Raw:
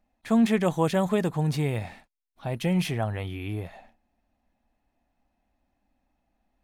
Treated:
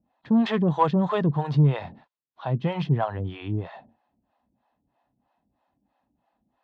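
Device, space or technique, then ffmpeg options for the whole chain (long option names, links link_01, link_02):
guitar amplifier with harmonic tremolo: -filter_complex "[0:a]acrossover=split=450[link_01][link_02];[link_01]aeval=exprs='val(0)*(1-1/2+1/2*cos(2*PI*3.1*n/s))':channel_layout=same[link_03];[link_02]aeval=exprs='val(0)*(1-1/2-1/2*cos(2*PI*3.1*n/s))':channel_layout=same[link_04];[link_03][link_04]amix=inputs=2:normalize=0,asoftclip=type=tanh:threshold=-21dB,highpass=97,equalizer=frequency=140:width_type=q:width=4:gain=8,equalizer=frequency=1000:width_type=q:width=4:gain=7,equalizer=frequency=2300:width_type=q:width=4:gain=-9,lowpass=frequency=4000:width=0.5412,lowpass=frequency=4000:width=1.3066,volume=7dB"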